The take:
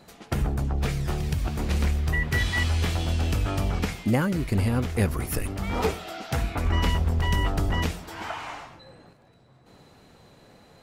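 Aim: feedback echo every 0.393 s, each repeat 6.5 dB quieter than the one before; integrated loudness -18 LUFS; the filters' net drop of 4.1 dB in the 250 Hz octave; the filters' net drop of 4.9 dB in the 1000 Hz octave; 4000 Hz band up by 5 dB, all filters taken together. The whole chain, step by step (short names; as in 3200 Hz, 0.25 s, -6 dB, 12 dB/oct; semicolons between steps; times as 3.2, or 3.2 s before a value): bell 250 Hz -5.5 dB; bell 1000 Hz -6.5 dB; bell 4000 Hz +7.5 dB; feedback echo 0.393 s, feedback 47%, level -6.5 dB; gain +8.5 dB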